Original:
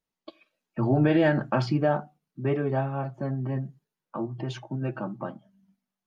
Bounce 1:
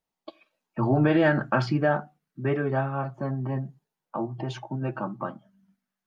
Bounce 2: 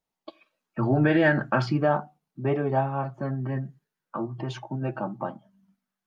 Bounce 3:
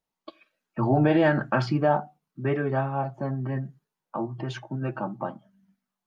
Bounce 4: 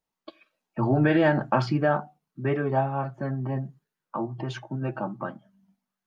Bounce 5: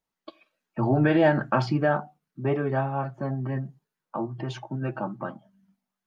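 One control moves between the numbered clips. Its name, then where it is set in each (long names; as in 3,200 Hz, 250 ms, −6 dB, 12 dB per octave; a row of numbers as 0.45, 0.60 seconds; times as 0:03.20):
auto-filter bell, speed: 0.24, 0.4, 0.97, 1.4, 2.4 Hertz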